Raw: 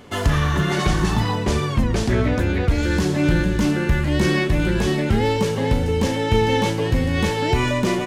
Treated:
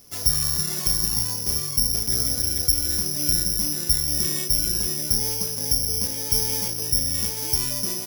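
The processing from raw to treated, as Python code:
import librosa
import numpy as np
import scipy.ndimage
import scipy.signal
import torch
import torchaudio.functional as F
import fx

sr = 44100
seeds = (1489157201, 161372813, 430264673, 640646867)

y = fx.low_shelf(x, sr, hz=140.0, db=7.5)
y = (np.kron(y[::8], np.eye(8)[0]) * 8)[:len(y)]
y = y * librosa.db_to_amplitude(-17.5)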